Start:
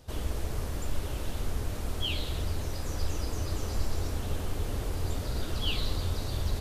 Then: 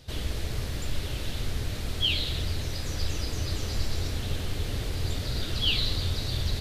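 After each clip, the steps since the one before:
octave-band graphic EQ 125/1,000/2,000/4,000 Hz +5/−4/+5/+9 dB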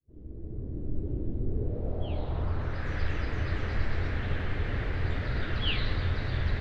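fade in at the beginning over 1.16 s
low-pass filter sweep 330 Hz → 1,800 Hz, 0:01.42–0:02.93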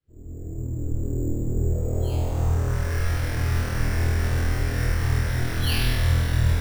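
decimation without filtering 6×
on a send: flutter between parallel walls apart 4.2 metres, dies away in 1.1 s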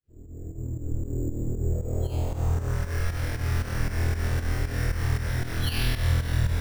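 fake sidechain pumping 116 BPM, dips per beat 2, −10 dB, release 150 ms
level −2.5 dB

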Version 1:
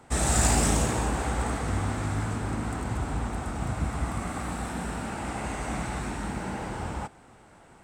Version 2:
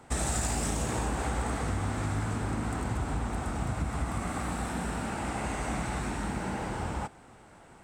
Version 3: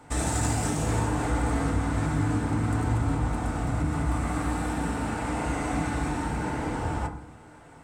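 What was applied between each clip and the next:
downward compressor 10 to 1, threshold −26 dBFS, peak gain reduction 9 dB
feedback delay network reverb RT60 0.57 s, low-frequency decay 1.5×, high-frequency decay 0.3×, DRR 0.5 dB

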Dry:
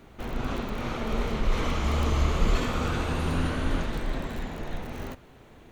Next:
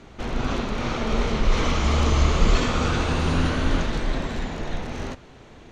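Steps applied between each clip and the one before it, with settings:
low-pass with resonance 6,100 Hz, resonance Q 1.6
level +5 dB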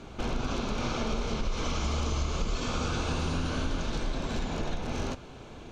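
notch filter 1,900 Hz, Q 5.2
dynamic equaliser 5,700 Hz, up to +5 dB, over −48 dBFS, Q 1.3
downward compressor 6 to 1, threshold −28 dBFS, peak gain reduction 15.5 dB
level +1 dB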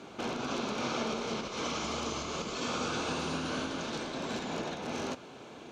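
high-pass filter 210 Hz 12 dB per octave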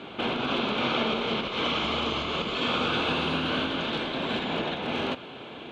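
high shelf with overshoot 4,400 Hz −10.5 dB, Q 3
level +6 dB

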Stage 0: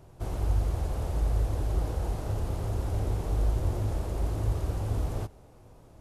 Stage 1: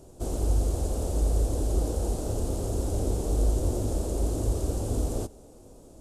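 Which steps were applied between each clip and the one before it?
octave-band graphic EQ 125/250/500/1,000/2,000/8,000 Hz −8/+6/+4/−5/−10/+11 dB
level +3 dB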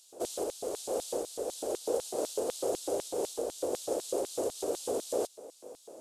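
downward compressor, threshold −26 dBFS, peak gain reduction 7.5 dB
auto-filter high-pass square 4 Hz 480–3,700 Hz
level +2 dB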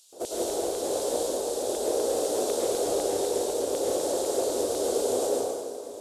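in parallel at −12 dB: soft clipping −30.5 dBFS, distortion −12 dB
on the sum: dense smooth reverb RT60 1.8 s, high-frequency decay 0.85×, pre-delay 90 ms, DRR −5 dB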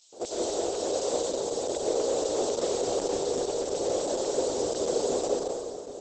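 Opus 10 kbit/s 48,000 Hz

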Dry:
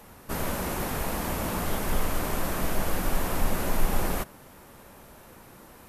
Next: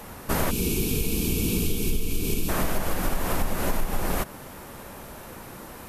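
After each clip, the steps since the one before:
gain on a spectral selection 0:00.51–0:02.49, 490–2,200 Hz −22 dB
downward compressor 12 to 1, threshold −28 dBFS, peak gain reduction 14 dB
level +8.5 dB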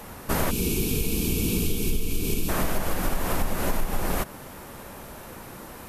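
no processing that can be heard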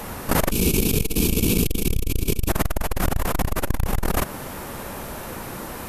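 saturating transformer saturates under 150 Hz
level +8 dB

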